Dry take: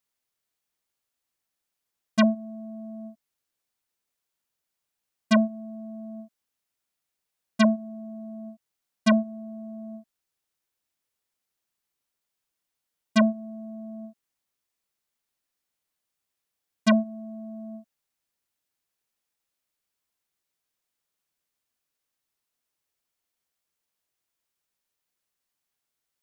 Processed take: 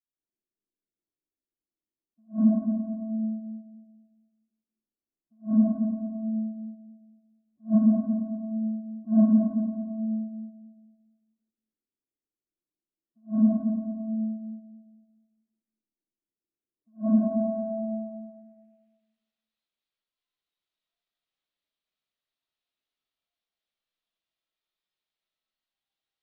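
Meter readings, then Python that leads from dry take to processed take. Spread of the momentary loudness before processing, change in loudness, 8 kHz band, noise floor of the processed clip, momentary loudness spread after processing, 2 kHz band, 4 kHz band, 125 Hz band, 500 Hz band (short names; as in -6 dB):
19 LU, -2.0 dB, under -30 dB, under -85 dBFS, 18 LU, under -30 dB, under -40 dB, n/a, -4.0 dB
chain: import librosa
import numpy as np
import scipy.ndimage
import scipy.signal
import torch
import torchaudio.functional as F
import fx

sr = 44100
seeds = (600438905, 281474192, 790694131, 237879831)

p1 = fx.noise_reduce_blind(x, sr, reduce_db=17)
p2 = fx.spec_gate(p1, sr, threshold_db=-15, keep='strong')
p3 = fx.dynamic_eq(p2, sr, hz=250.0, q=2.0, threshold_db=-32.0, ratio=4.0, max_db=4)
p4 = fx.over_compress(p3, sr, threshold_db=-26.0, ratio=-0.5)
p5 = p3 + F.gain(torch.from_numpy(p4), -1.0).numpy()
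p6 = fx.filter_sweep_lowpass(p5, sr, from_hz=330.0, to_hz=3700.0, start_s=16.76, end_s=19.01, q=2.9)
p7 = 10.0 ** (-8.5 / 20.0) * np.tanh(p6 / 10.0 ** (-8.5 / 20.0))
p8 = fx.echo_feedback(p7, sr, ms=223, feedback_pct=37, wet_db=-5.0)
p9 = fx.rev_freeverb(p8, sr, rt60_s=1.2, hf_ratio=0.35, predelay_ms=40, drr_db=-8.5)
p10 = fx.attack_slew(p9, sr, db_per_s=300.0)
y = F.gain(torch.from_numpy(p10), -8.5).numpy()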